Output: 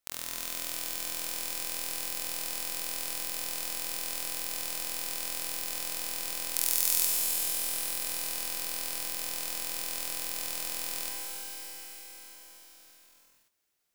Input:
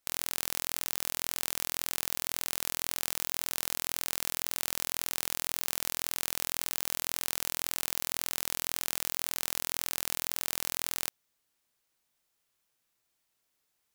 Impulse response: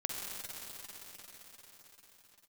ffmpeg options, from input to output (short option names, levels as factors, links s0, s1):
-filter_complex "[0:a]asettb=1/sr,asplit=3[s0][s1][s2];[s0]atrim=end=6.564[s3];[s1]atrim=start=6.56:end=7.06,asetpts=PTS-STARTPTS,afade=t=in:d=0.004:c=qsin,afade=t=out:st=0.496:d=0.004:c=qsin,equalizer=f=12000:t=o:w=2.3:g=13[s4];[s2]atrim=start=7.056[s5];[s3][s4]acrossfade=d=0.004:c1=hsin:c2=qsin[s6];[s6][s5]acrossfade=d=0.004:c1=qsin:c2=hsin[s7];[1:a]atrim=start_sample=2205[s8];[s7][s8]afir=irnorm=-1:irlink=0,volume=0.631"